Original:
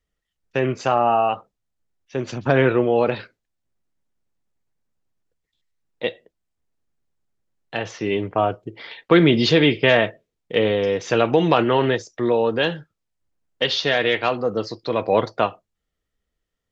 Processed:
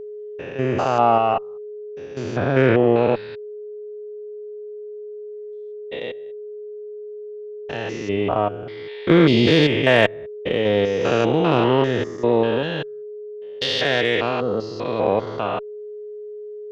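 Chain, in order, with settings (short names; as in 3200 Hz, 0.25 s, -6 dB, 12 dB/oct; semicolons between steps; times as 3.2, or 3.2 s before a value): stepped spectrum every 0.2 s; added harmonics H 7 -34 dB, 8 -37 dB, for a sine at -4.5 dBFS; whine 420 Hz -35 dBFS; gain +3.5 dB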